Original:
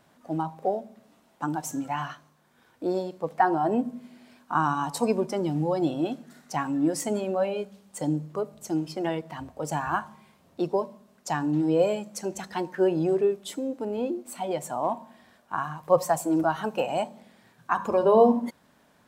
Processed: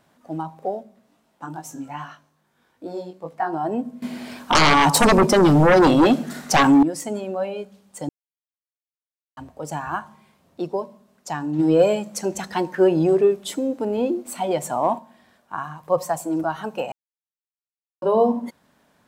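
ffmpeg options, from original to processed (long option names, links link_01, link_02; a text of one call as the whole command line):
ffmpeg -i in.wav -filter_complex "[0:a]asplit=3[link_01][link_02][link_03];[link_01]afade=type=out:start_time=0.82:duration=0.02[link_04];[link_02]flanger=delay=18:depth=4:speed=2.4,afade=type=in:start_time=0.82:duration=0.02,afade=type=out:start_time=3.52:duration=0.02[link_05];[link_03]afade=type=in:start_time=3.52:duration=0.02[link_06];[link_04][link_05][link_06]amix=inputs=3:normalize=0,asettb=1/sr,asplit=3[link_07][link_08][link_09];[link_07]atrim=end=4.024[link_10];[link_08]atrim=start=4.02:end=6.83,asetpts=PTS-STARTPTS,afade=type=in:duration=0.004:curve=qsin,afade=type=out:start_time=2.806:duration=0.004:curve=qsin,aeval=exprs='0.316*sin(PI/2*5.01*val(0)/0.316)':channel_layout=same[link_11];[link_09]atrim=start=6.826[link_12];[link_10][link_11]acrossfade=duration=0.004:curve1=hsin:curve2=qsin[link_13];[link_13][link_12]acrossfade=duration=0.004:curve1=qsin:curve2=hsin,asplit=3[link_14][link_15][link_16];[link_14]afade=type=out:start_time=11.58:duration=0.02[link_17];[link_15]acontrast=72,afade=type=in:start_time=11.58:duration=0.02,afade=type=out:start_time=14.98:duration=0.02[link_18];[link_16]afade=type=in:start_time=14.98:duration=0.02[link_19];[link_17][link_18][link_19]amix=inputs=3:normalize=0,asplit=5[link_20][link_21][link_22][link_23][link_24];[link_20]atrim=end=8.09,asetpts=PTS-STARTPTS,afade=type=out:start_time=8.086:duration=0.004:curve=hsin[link_25];[link_21]atrim=start=8.09:end=9.37,asetpts=PTS-STARTPTS,volume=0[link_26];[link_22]atrim=start=9.37:end=16.92,asetpts=PTS-STARTPTS,afade=type=in:duration=0.004:curve=hsin,afade=type=out:start_time=7.546:duration=0.004:curve=hsin[link_27];[link_23]atrim=start=16.92:end=18.02,asetpts=PTS-STARTPTS,volume=0[link_28];[link_24]atrim=start=18.02,asetpts=PTS-STARTPTS,afade=type=in:duration=0.004:curve=hsin[link_29];[link_25][link_26][link_27][link_28][link_29]concat=n=5:v=0:a=1" out.wav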